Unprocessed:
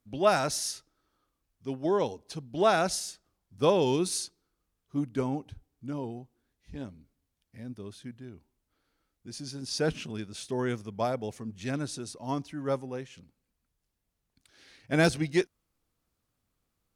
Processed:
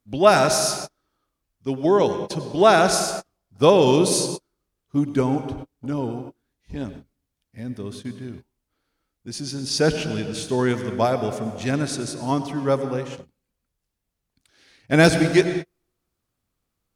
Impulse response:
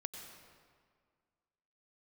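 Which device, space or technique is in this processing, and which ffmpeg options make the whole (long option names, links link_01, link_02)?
keyed gated reverb: -filter_complex "[0:a]asplit=3[link_01][link_02][link_03];[1:a]atrim=start_sample=2205[link_04];[link_02][link_04]afir=irnorm=-1:irlink=0[link_05];[link_03]apad=whole_len=747908[link_06];[link_05][link_06]sidechaingate=range=-47dB:threshold=-49dB:ratio=16:detection=peak,volume=7dB[link_07];[link_01][link_07]amix=inputs=2:normalize=0,volume=1dB"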